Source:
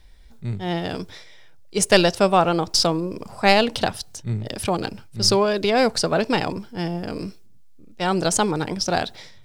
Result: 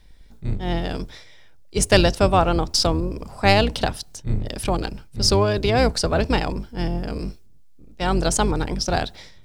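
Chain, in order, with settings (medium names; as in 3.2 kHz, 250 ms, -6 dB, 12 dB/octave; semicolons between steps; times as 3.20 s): octave divider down 2 oct, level +3 dB; trim -1 dB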